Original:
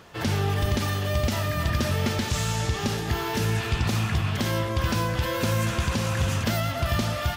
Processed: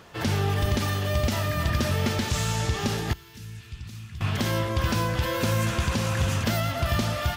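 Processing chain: 3.13–4.21 passive tone stack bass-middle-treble 6-0-2

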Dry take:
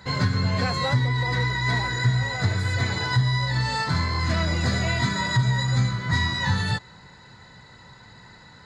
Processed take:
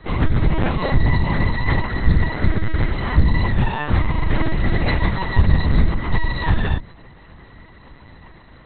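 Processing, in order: octaver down 2 oct, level +2 dB; notches 50/100/150/200/250/300/350 Hz; in parallel at -4 dB: sample-rate reducer 1900 Hz, jitter 0%; on the sum: LPC vocoder at 8 kHz pitch kept; Doppler distortion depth 0.15 ms

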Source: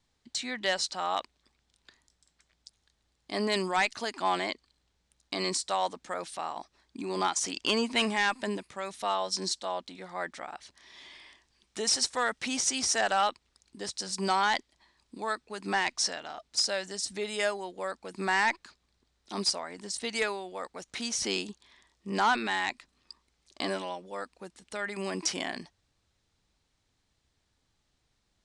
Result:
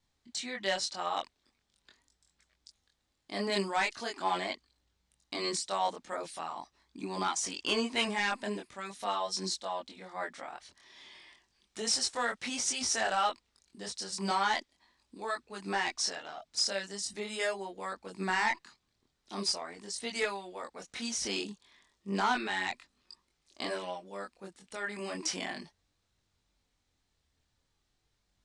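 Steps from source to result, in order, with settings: chorus voices 2, 0.42 Hz, delay 23 ms, depth 2.9 ms

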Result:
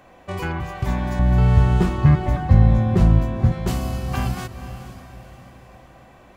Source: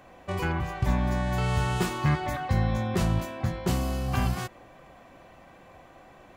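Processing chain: 1.19–3.52 tilt -3 dB/oct; diffused feedback echo 0.486 s, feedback 45%, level -12 dB; gain +2 dB

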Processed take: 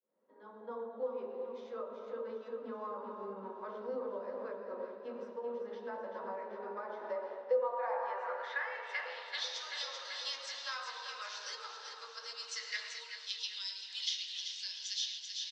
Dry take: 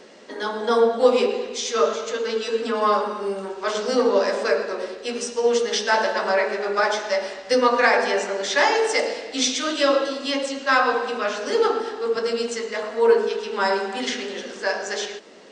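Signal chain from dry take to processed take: opening faded in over 1.69 s; compressor, threshold -25 dBFS, peak gain reduction 13 dB; band-pass sweep 200 Hz -> 5600 Hz, 6.73–9.67; high shelf 4100 Hz +10.5 dB; band-pass sweep 1100 Hz -> 3200 Hz, 12.37–13.23; graphic EQ 125/500/2000/4000 Hz +10/+6/+4/+8 dB; feedback echo 0.386 s, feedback 59%, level -8 dB; vocal rider within 5 dB 0.5 s; small resonant body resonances 520/950/3700 Hz, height 9 dB, ringing for 85 ms

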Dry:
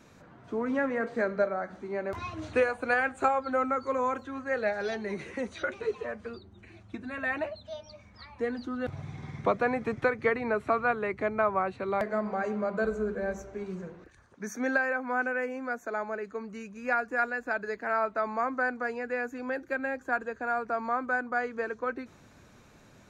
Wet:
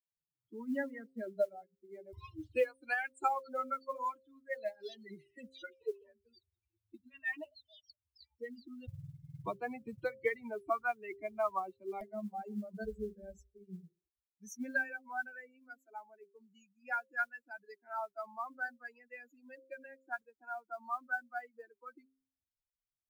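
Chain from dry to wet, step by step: per-bin expansion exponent 3; modulation noise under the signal 35 dB; de-hum 132.6 Hz, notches 4; gain -2 dB

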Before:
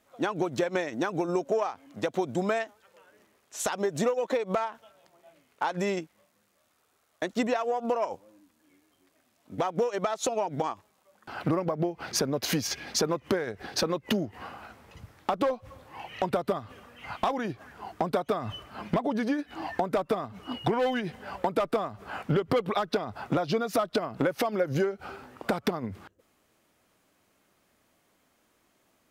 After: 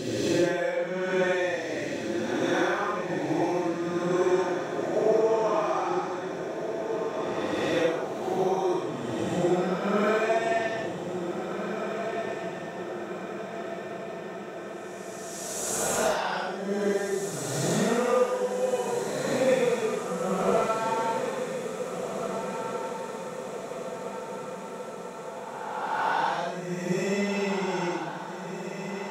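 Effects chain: spectral swells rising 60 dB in 0.34 s; Paulstretch 5.1×, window 0.10 s, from 0.52; diffused feedback echo 1.767 s, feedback 66%, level -7 dB

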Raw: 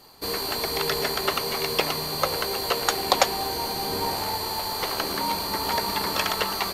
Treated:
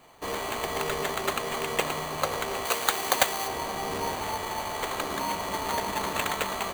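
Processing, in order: sample-rate reducer 5300 Hz, jitter 0%; 2.65–3.48 tilt +2 dB/oct; gain -3.5 dB

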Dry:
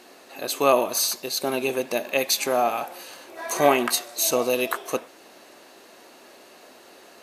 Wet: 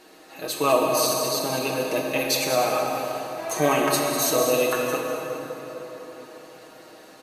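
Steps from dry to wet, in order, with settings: low shelf 200 Hz +9 dB; comb 6.4 ms, depth 72%; echo 0.199 s -9.5 dB; plate-style reverb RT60 4.3 s, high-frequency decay 0.55×, DRR 0 dB; gain -4.5 dB

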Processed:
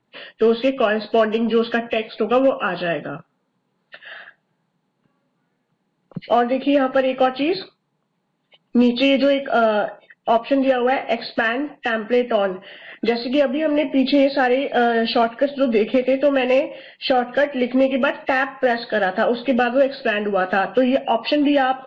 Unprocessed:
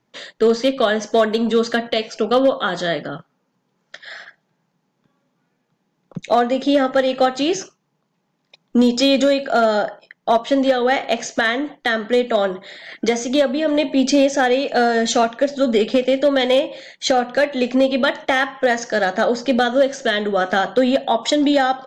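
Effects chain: nonlinear frequency compression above 1800 Hz 1.5:1; gain -1 dB

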